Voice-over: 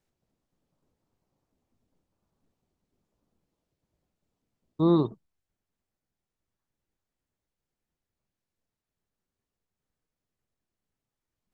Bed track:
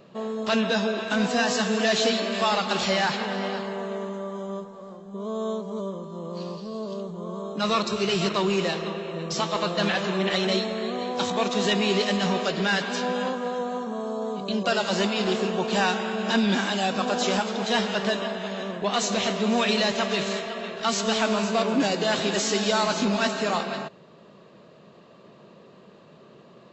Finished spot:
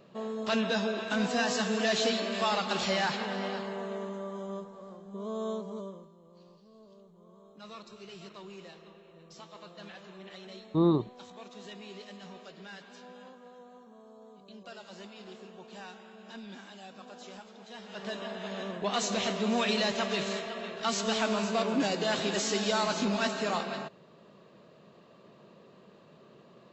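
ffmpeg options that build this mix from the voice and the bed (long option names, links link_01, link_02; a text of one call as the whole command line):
ffmpeg -i stem1.wav -i stem2.wav -filter_complex "[0:a]adelay=5950,volume=-2.5dB[link_01];[1:a]volume=12dB,afade=type=out:start_time=5.61:duration=0.55:silence=0.133352,afade=type=in:start_time=17.81:duration=0.78:silence=0.133352[link_02];[link_01][link_02]amix=inputs=2:normalize=0" out.wav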